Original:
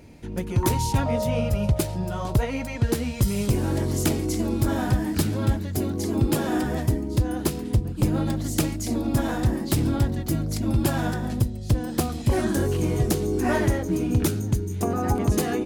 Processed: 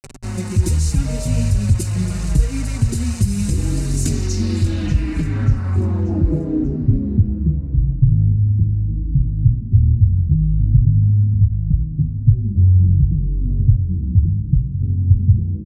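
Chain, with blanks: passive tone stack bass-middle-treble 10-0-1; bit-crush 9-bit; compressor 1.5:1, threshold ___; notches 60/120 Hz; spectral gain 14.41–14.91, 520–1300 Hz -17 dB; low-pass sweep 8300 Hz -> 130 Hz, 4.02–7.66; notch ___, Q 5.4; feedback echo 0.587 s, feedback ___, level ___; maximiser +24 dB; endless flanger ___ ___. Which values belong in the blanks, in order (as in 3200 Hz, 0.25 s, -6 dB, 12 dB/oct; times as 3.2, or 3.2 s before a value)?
-37 dBFS, 3300 Hz, 45%, -15 dB, 4.7 ms, -0.74 Hz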